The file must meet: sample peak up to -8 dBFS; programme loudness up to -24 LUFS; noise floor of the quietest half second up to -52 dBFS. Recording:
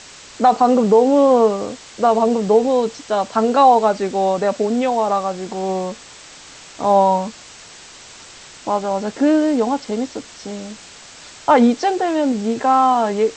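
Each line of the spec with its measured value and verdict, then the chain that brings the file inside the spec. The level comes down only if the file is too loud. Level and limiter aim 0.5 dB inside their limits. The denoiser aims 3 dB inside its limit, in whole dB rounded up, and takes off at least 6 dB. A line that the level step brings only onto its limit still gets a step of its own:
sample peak -3.0 dBFS: fail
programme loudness -17.0 LUFS: fail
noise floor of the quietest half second -41 dBFS: fail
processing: noise reduction 7 dB, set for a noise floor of -41 dBFS; trim -7.5 dB

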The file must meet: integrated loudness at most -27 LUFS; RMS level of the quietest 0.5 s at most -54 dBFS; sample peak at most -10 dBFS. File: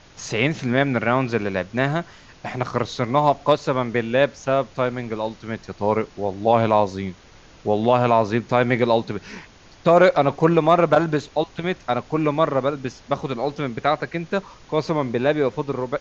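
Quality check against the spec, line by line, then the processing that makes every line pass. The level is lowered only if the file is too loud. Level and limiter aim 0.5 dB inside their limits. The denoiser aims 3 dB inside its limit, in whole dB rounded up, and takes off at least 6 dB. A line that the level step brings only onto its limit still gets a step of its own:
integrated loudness -21.5 LUFS: fail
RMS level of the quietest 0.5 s -48 dBFS: fail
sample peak -3.5 dBFS: fail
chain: noise reduction 6 dB, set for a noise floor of -48 dBFS; trim -6 dB; peak limiter -10.5 dBFS

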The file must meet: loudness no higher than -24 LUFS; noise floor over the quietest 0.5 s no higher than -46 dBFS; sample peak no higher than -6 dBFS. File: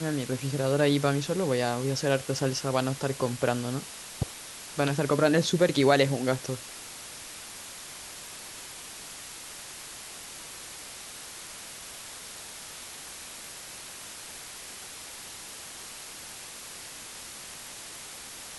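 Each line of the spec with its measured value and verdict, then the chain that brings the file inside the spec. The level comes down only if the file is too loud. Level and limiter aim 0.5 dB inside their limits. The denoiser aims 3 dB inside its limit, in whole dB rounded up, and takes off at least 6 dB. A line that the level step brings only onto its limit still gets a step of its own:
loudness -31.0 LUFS: pass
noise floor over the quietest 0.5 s -43 dBFS: fail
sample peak -7.5 dBFS: pass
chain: noise reduction 6 dB, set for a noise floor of -43 dBFS

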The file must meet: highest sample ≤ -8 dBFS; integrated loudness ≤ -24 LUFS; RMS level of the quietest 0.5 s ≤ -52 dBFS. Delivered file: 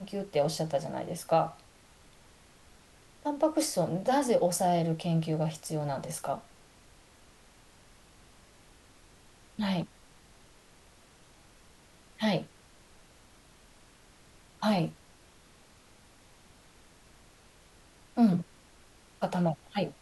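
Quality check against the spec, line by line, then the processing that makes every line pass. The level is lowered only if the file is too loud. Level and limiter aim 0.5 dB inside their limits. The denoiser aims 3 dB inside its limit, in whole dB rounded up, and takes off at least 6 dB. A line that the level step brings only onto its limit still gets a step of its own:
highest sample -14.5 dBFS: pass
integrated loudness -30.5 LUFS: pass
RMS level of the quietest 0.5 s -58 dBFS: pass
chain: none needed

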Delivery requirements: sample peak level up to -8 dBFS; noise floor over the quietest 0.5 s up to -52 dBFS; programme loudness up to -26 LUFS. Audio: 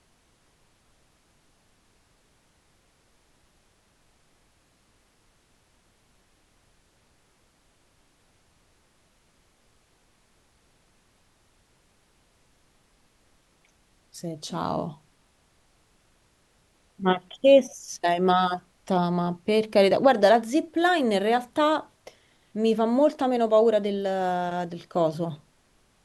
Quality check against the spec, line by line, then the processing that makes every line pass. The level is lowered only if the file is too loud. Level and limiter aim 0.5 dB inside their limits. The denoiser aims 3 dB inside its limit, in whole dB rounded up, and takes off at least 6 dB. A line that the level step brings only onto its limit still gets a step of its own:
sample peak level -5.0 dBFS: fail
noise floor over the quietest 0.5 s -64 dBFS: pass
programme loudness -23.5 LUFS: fail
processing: trim -3 dB; peak limiter -8.5 dBFS

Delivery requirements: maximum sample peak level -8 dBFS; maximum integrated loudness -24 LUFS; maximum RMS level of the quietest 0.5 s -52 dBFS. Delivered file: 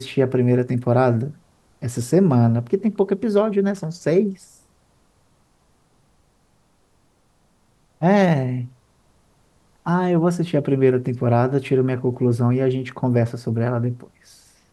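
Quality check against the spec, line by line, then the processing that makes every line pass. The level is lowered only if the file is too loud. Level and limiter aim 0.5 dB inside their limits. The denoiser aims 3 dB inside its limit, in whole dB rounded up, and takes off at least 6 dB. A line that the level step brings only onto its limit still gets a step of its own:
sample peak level -4.5 dBFS: fail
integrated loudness -20.0 LUFS: fail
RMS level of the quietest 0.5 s -61 dBFS: pass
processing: trim -4.5 dB

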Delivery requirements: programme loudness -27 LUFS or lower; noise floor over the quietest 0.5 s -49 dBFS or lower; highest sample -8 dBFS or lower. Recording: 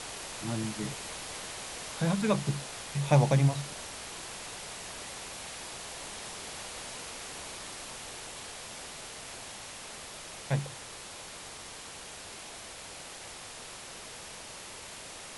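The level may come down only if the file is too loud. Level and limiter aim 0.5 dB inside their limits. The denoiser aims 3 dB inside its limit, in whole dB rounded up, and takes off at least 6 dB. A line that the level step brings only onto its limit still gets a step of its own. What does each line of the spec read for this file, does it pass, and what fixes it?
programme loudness -35.5 LUFS: pass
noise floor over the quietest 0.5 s -45 dBFS: fail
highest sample -12.0 dBFS: pass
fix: noise reduction 7 dB, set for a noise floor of -45 dBFS

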